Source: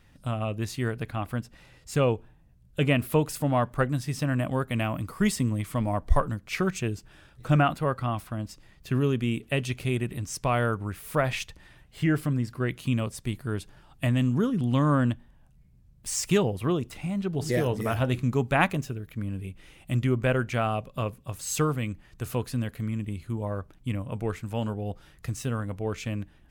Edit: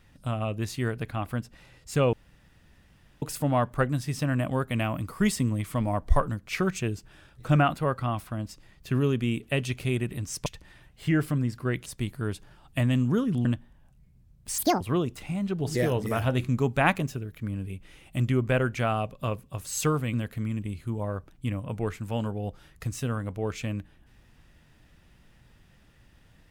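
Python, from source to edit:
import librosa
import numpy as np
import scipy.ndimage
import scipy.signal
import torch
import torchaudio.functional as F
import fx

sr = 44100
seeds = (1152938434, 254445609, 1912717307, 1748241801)

y = fx.edit(x, sr, fx.room_tone_fill(start_s=2.13, length_s=1.09),
    fx.cut(start_s=10.46, length_s=0.95),
    fx.cut(start_s=12.81, length_s=0.31),
    fx.cut(start_s=14.71, length_s=0.32),
    fx.speed_span(start_s=16.16, length_s=0.39, speed=1.73),
    fx.cut(start_s=21.88, length_s=0.68), tone=tone)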